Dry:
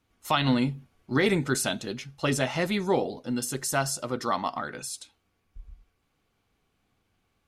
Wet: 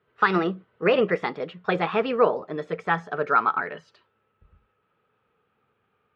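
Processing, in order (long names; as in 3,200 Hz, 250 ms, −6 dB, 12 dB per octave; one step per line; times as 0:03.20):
gliding playback speed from 137% → 106%
loudspeaker in its box 120–2,900 Hz, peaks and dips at 300 Hz −9 dB, 440 Hz +10 dB, 1,300 Hz +10 dB
level +1.5 dB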